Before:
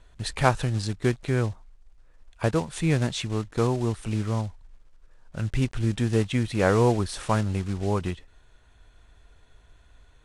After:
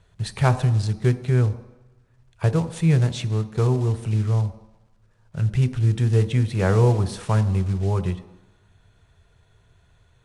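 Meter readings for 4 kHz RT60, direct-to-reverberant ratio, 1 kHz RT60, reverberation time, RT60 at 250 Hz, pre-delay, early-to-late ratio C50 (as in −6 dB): 1.0 s, 10.5 dB, 1.1 s, 1.0 s, 0.80 s, 3 ms, 14.5 dB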